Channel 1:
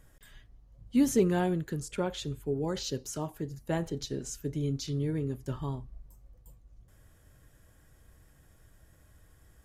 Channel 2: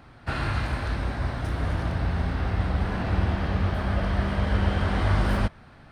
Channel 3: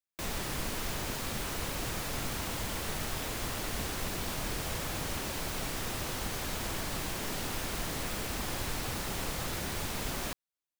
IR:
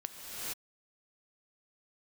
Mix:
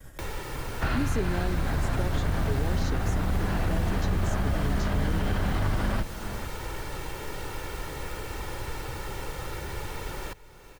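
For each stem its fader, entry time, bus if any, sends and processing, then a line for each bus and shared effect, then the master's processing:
−4.0 dB, 0.00 s, no send, downward expander −53 dBFS
−1.0 dB, 0.55 s, send −14 dB, sub-octave generator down 2 octaves, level 0 dB; brickwall limiter −19 dBFS, peak gain reduction 9 dB
−11.0 dB, 0.00 s, send −20.5 dB, comb filter 2.2 ms, depth 60%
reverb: on, pre-delay 3 ms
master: multiband upward and downward compressor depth 70%

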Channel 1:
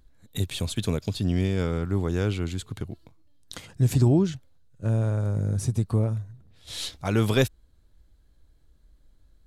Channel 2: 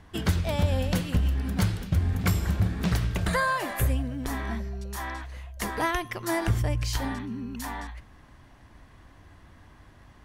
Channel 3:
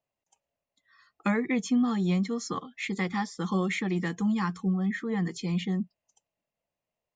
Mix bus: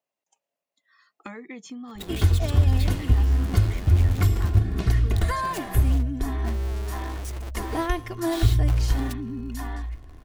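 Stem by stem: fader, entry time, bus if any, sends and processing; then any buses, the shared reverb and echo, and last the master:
+1.5 dB, 1.65 s, bus A, no send, each half-wave held at its own peak; compressor whose output falls as the input rises −25 dBFS, ratio −1
−5.5 dB, 1.95 s, no bus, no send, low-shelf EQ 310 Hz +11.5 dB; comb filter 2.8 ms, depth 76%
0.0 dB, 0.00 s, bus A, no send, no processing
bus A: 0.0 dB, high-pass filter 240 Hz 12 dB per octave; downward compressor 4 to 1, threshold −38 dBFS, peak gain reduction 15 dB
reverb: not used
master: hum removal 68.33 Hz, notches 2

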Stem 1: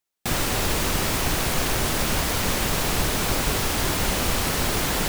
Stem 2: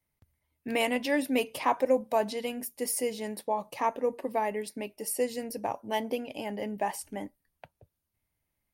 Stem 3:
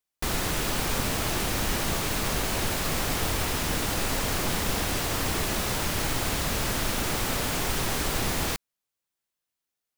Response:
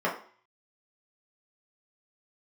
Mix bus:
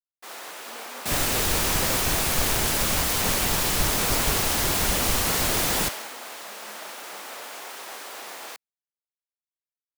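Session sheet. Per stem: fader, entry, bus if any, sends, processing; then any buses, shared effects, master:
−3.0 dB, 0.80 s, no send, high-shelf EQ 4,600 Hz +6.5 dB
−15.0 dB, 0.00 s, no send, no processing
−0.5 dB, 0.00 s, no send, Chebyshev high-pass filter 630 Hz, order 2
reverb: not used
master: multiband upward and downward expander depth 100%

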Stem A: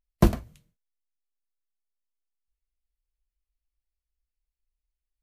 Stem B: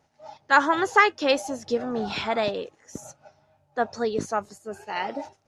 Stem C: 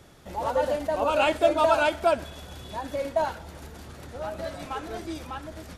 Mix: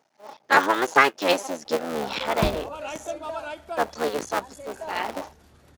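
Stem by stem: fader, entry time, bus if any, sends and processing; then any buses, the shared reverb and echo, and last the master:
−1.0 dB, 2.20 s, no send, downward compressor, threshold −18 dBFS, peak gain reduction 6.5 dB
+2.5 dB, 0.00 s, no send, sub-harmonics by changed cycles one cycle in 3, muted; high-pass filter 250 Hz 12 dB per octave
−12.0 dB, 1.65 s, no send, no processing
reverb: not used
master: no processing

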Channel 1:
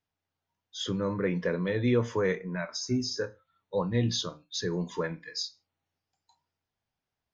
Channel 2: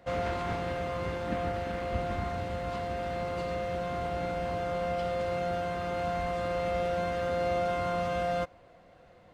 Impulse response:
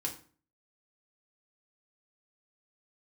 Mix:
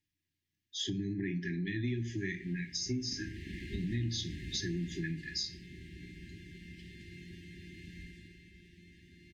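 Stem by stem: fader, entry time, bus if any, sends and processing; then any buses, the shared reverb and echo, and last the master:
−2.5 dB, 0.00 s, send −5 dB, no processing
0:02.78 −16.5 dB → 0:03.57 −3.5 dB → 0:04.85 −3.5 dB → 0:05.16 −10.5 dB → 0:08.03 −10.5 dB → 0:08.49 −19.5 dB, 1.80 s, no send, no processing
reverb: on, RT60 0.40 s, pre-delay 3 ms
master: brick-wall band-stop 400–1,600 Hz; downward compressor 4 to 1, threshold −33 dBFS, peak gain reduction 11 dB

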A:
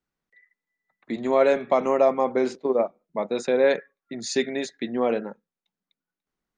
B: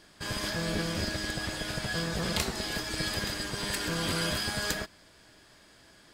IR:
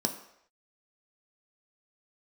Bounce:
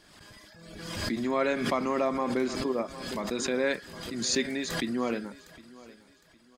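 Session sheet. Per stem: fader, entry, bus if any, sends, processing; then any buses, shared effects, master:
−2.5 dB, 0.00 s, no send, echo send −20.5 dB, flat-topped bell 600 Hz −8 dB 1.3 octaves
−16.5 dB, 0.00 s, no send, echo send −8 dB, reverb reduction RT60 1.6 s; envelope flattener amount 50%; automatic ducking −8 dB, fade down 0.70 s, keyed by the first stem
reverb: not used
echo: repeating echo 760 ms, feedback 33%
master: background raised ahead of every attack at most 43 dB per second

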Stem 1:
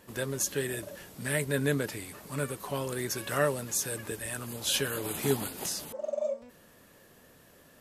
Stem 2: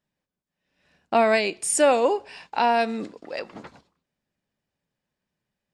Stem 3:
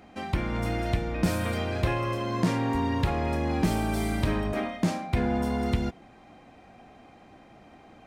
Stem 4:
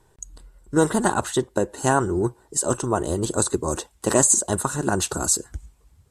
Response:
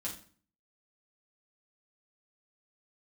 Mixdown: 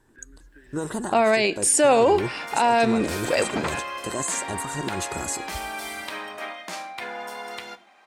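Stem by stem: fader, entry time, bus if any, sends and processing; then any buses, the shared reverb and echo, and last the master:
−3.0 dB, 0.00 s, no send, downward compressor 1.5 to 1, threshold −49 dBFS, peak gain reduction 10 dB; pair of resonant band-passes 690 Hz, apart 2.4 octaves
−1.0 dB, 0.00 s, no send, automatic gain control gain up to 16.5 dB
+1.5 dB, 1.85 s, send −10 dB, high-pass filter 890 Hz 12 dB per octave
−5.0 dB, 0.00 s, no send, brickwall limiter −14 dBFS, peak gain reduction 9 dB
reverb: on, RT60 0.45 s, pre-delay 5 ms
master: brickwall limiter −10 dBFS, peak gain reduction 8.5 dB

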